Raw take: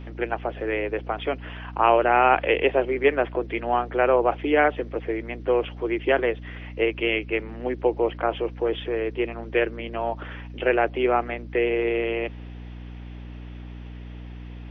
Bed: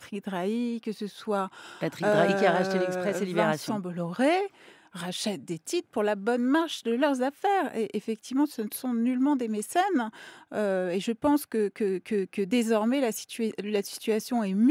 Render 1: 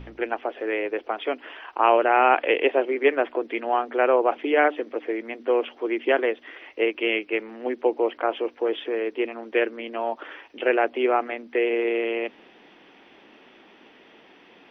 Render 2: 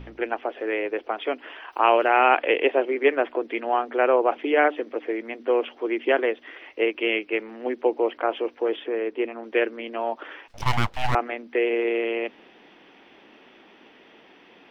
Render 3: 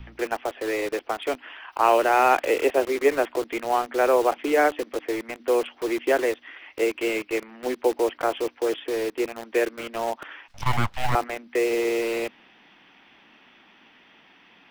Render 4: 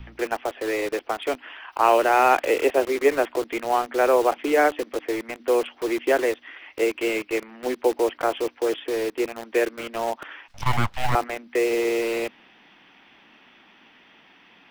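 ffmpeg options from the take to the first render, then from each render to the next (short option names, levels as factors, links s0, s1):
-af "bandreject=f=60:t=h:w=4,bandreject=f=120:t=h:w=4,bandreject=f=180:t=h:w=4,bandreject=f=240:t=h:w=4,bandreject=f=300:t=h:w=4"
-filter_complex "[0:a]asplit=3[s0][s1][s2];[s0]afade=t=out:st=1.71:d=0.02[s3];[s1]aemphasis=mode=production:type=75fm,afade=t=in:st=1.71:d=0.02,afade=t=out:st=2.36:d=0.02[s4];[s2]afade=t=in:st=2.36:d=0.02[s5];[s3][s4][s5]amix=inputs=3:normalize=0,asettb=1/sr,asplit=3[s6][s7][s8];[s6]atrim=end=8.764[s9];[s7]atrim=start=8.76:end=9.44,asetpts=PTS-STARTPTS,afade=t=in:d=0.004:c=qsin,afade=t=out:st=0.676:d=0.004:c=qsin,lowpass=f=2600:p=1[s10];[s8]atrim=start=9.436[s11];[s9][s10]acrossfade=d=0.004:c1=hsin:c2=qsin[s12];[s12][s11]acrossfade=d=0.004:c1=qsin:c2=hsin,asettb=1/sr,asplit=3[s13][s14][s15];[s13]atrim=end=10.484[s16];[s14]atrim=start=10.48:end=11.15,asetpts=PTS-STARTPTS,afade=t=in:d=0.004:c=qsin,afade=t=out:st=0.666:d=0.004:c=qsin,aeval=exprs='abs(val(0))':c=same[s17];[s15]atrim=start=11.146[s18];[s16][s17]acrossfade=d=0.004:c1=hsin:c2=qsin[s19];[s19][s18]acrossfade=d=0.004:c1=qsin:c2=hsin"
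-filter_complex "[0:a]acrossover=split=280|680|1800[s0][s1][s2][s3];[s1]acrusher=bits=5:mix=0:aa=0.000001[s4];[s3]volume=35.5,asoftclip=hard,volume=0.0282[s5];[s0][s4][s2][s5]amix=inputs=4:normalize=0"
-af "volume=1.12"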